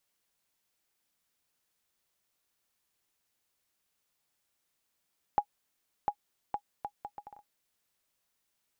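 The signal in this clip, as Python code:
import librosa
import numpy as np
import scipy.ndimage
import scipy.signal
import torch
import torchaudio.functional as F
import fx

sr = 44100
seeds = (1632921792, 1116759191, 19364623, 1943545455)

y = fx.bouncing_ball(sr, first_gap_s=0.7, ratio=0.66, hz=825.0, decay_ms=73.0, level_db=-15.0)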